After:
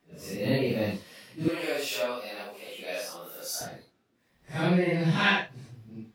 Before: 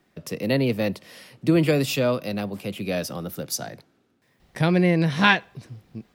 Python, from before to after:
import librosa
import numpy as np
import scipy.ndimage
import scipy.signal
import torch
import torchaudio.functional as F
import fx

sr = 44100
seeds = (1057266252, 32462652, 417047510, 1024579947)

y = fx.phase_scramble(x, sr, seeds[0], window_ms=200)
y = fx.highpass(y, sr, hz=580.0, slope=12, at=(1.48, 3.61))
y = y * librosa.db_to_amplitude(-4.0)